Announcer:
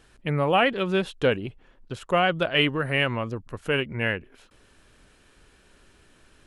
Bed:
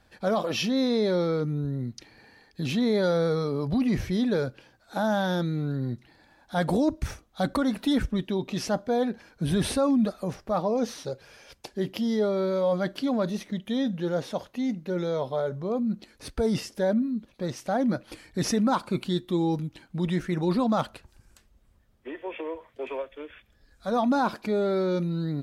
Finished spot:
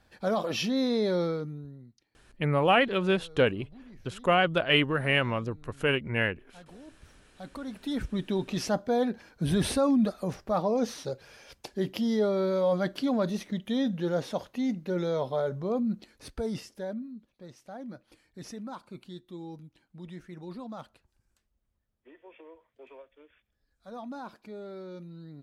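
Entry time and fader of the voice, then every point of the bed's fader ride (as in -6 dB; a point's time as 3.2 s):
2.15 s, -1.5 dB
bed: 1.25 s -2.5 dB
2.1 s -26 dB
6.96 s -26 dB
8.3 s -1 dB
15.8 s -1 dB
17.43 s -16.5 dB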